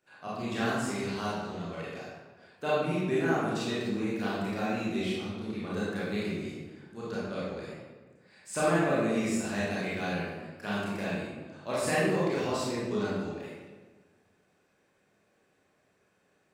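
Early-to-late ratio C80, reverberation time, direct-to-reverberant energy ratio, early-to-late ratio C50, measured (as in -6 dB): 0.5 dB, 1.4 s, -9.0 dB, -3.0 dB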